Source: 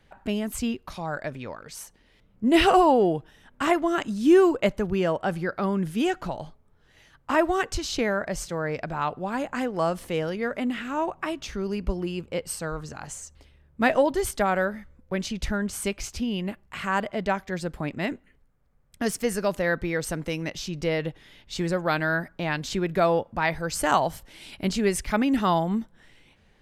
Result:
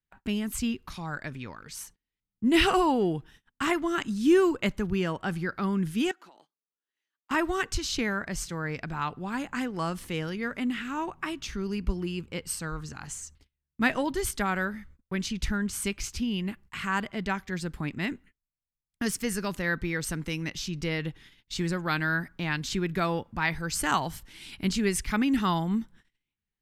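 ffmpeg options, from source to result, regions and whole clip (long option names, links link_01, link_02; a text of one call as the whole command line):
ffmpeg -i in.wav -filter_complex "[0:a]asettb=1/sr,asplit=3[link_01][link_02][link_03];[link_01]atrim=end=6.114[link_04];[link_02]atrim=start=6.11:end=7.31,asetpts=PTS-STARTPTS,afade=type=in:duration=0.004:curve=qsin,afade=type=out:start_time=1.196:duration=0.004:curve=qsin,highpass=frequency=300:width=0.5412,highpass=frequency=300:width=1.3066,acompressor=threshold=-48dB:ratio=3:attack=3.2:release=140:knee=1:detection=peak[link_05];[link_03]atrim=start=7.306[link_06];[link_04][link_05]acrossfade=duration=0.004:curve1=hsin:curve2=qsin[link_07];[link_07][link_06]acrossfade=duration=0.004:curve1=qsin:curve2=hsin,agate=range=-30dB:threshold=-49dB:ratio=16:detection=peak,equalizer=frequency=600:width=1.5:gain=-13" out.wav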